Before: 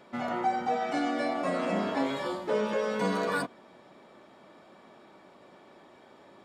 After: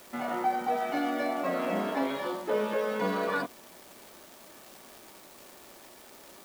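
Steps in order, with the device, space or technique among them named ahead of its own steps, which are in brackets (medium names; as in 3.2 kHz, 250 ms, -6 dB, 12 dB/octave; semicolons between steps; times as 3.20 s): 78 rpm shellac record (band-pass 190–4000 Hz; crackle 360 per s -40 dBFS; white noise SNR 23 dB)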